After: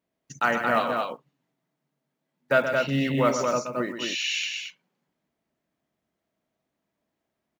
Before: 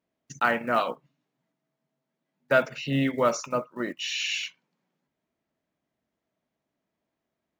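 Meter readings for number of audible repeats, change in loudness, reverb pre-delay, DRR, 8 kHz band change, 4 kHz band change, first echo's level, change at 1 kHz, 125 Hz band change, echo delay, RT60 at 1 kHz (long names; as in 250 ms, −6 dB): 2, +1.5 dB, no reverb audible, no reverb audible, +2.0 dB, +2.0 dB, −8.0 dB, +2.0 dB, +2.5 dB, 127 ms, no reverb audible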